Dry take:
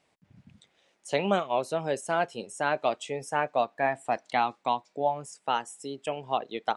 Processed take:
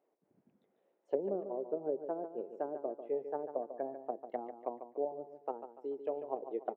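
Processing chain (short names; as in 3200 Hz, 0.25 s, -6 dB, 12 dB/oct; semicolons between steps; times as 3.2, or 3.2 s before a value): treble ducked by the level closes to 400 Hz, closed at -24 dBFS; ladder band-pass 460 Hz, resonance 45%; wow and flutter 17 cents; on a send: feedback echo 0.145 s, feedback 38%, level -10 dB; on the sum: gain +5.5 dB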